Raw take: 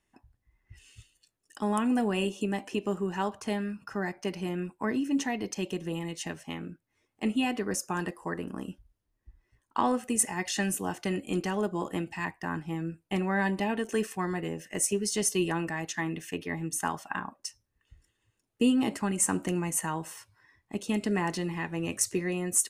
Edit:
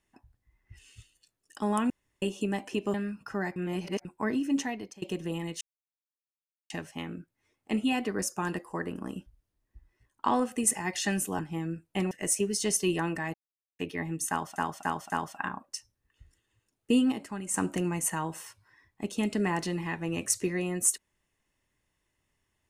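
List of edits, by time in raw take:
1.9–2.22 room tone
2.94–3.55 cut
4.17–4.66 reverse
5.18–5.63 fade out, to -23 dB
6.22 insert silence 1.09 s
10.91–12.55 cut
13.27–14.63 cut
15.86–16.31 mute
16.81–17.08 loop, 4 plays
18.83–19.25 gain -7.5 dB

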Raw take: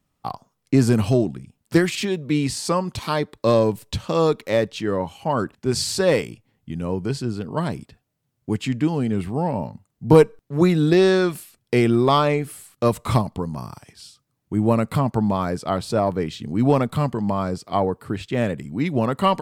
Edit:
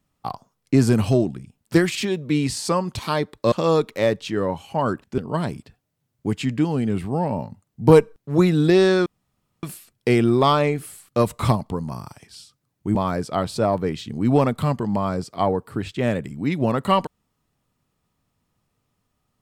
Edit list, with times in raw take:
3.52–4.03 cut
5.69–7.41 cut
11.29 insert room tone 0.57 s
14.61–15.29 cut

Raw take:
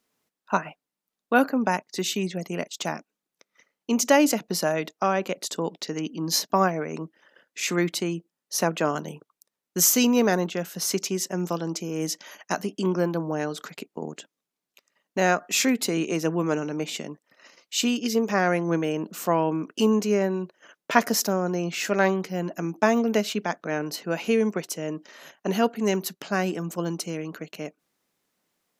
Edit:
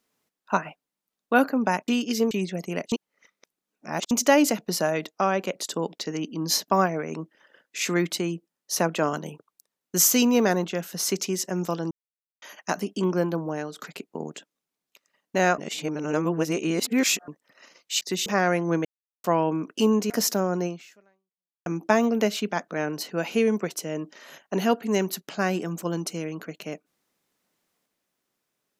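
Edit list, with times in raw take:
1.88–2.13 swap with 17.83–18.26
2.74–3.93 reverse
11.73–12.24 mute
13.16–13.61 fade out, to -7 dB
15.4–17.1 reverse
18.85–19.24 mute
20.1–21.03 cut
21.59–22.59 fade out exponential

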